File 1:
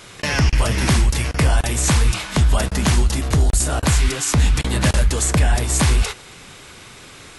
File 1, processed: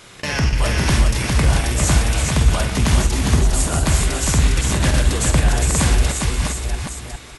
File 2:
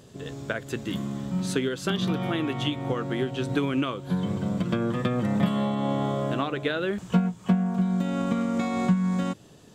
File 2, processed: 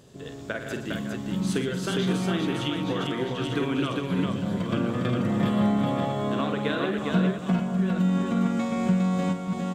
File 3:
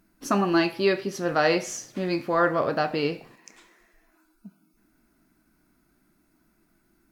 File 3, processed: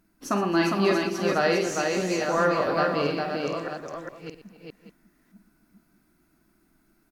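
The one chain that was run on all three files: reverse delay 0.614 s, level -6 dB; tapped delay 48/119/272/406/598 ms -8.5/-13/-18.5/-3.5/-15 dB; gain -2.5 dB

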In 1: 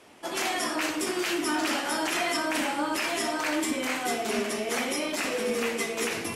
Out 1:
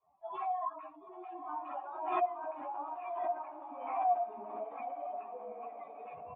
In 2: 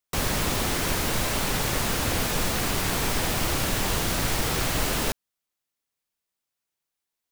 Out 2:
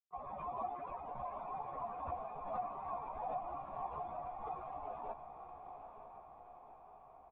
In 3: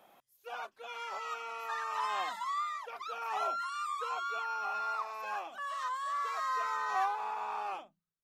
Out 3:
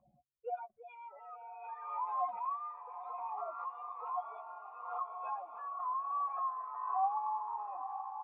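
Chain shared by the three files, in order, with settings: per-bin expansion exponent 3; reverse; compressor 6:1, threshold -45 dBFS; reverse; vocal tract filter a; doubler 14 ms -5.5 dB; on a send: diffused feedback echo 0.93 s, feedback 58%, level -8 dB; on the sum: backwards sustainer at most 57 dB/s; gain +17.5 dB

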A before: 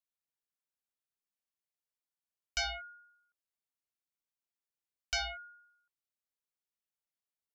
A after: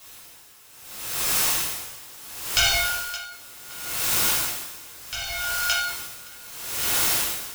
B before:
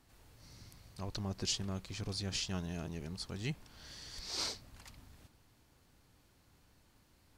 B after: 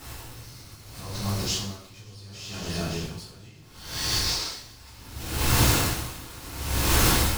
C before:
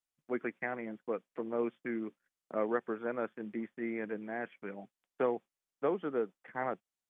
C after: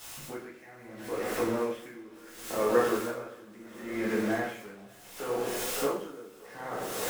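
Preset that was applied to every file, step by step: zero-crossing step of -43 dBFS; recorder AGC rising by 26 dB/s; on a send: split-band echo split 460 Hz, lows 88 ms, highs 0.569 s, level -9 dB; on the sum: two-slope reverb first 0.64 s, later 3.1 s, from -17 dB, DRR -7.5 dB; dB-linear tremolo 0.71 Hz, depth 22 dB

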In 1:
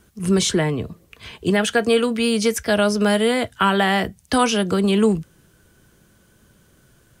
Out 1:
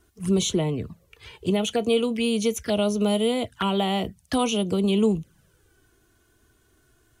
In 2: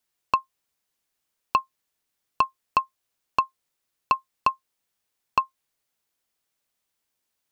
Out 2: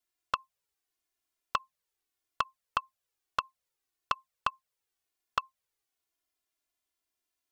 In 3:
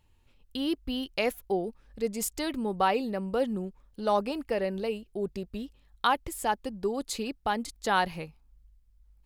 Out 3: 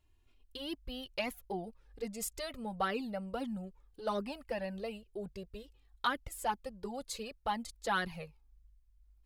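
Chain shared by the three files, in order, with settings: envelope flanger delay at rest 2.9 ms, full sweep at -17 dBFS; gain -3.5 dB

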